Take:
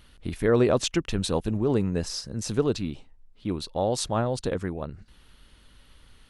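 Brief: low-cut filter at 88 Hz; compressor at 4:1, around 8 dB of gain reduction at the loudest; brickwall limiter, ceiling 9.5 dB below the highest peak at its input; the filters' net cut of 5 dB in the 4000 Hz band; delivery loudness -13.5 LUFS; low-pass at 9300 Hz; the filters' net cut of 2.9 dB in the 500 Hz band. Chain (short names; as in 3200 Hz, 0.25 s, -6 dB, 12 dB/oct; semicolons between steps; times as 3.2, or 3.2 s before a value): HPF 88 Hz; LPF 9300 Hz; bell 500 Hz -3.5 dB; bell 4000 Hz -6 dB; compressor 4:1, threshold -28 dBFS; gain +25 dB; limiter -3 dBFS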